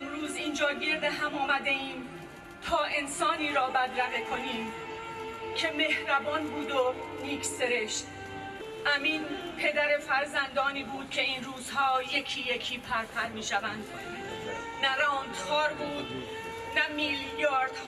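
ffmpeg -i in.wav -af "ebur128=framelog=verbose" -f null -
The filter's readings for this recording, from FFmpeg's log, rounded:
Integrated loudness:
  I:         -30.0 LUFS
  Threshold: -40.2 LUFS
Loudness range:
  LRA:         2.1 LU
  Threshold: -50.3 LUFS
  LRA low:   -31.3 LUFS
  LRA high:  -29.2 LUFS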